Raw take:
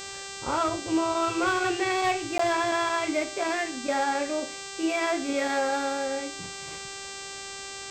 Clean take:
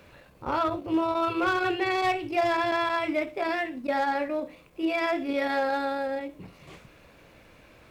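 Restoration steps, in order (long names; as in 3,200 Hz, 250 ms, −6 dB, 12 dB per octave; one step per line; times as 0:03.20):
hum removal 393 Hz, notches 21
repair the gap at 0:02.38, 14 ms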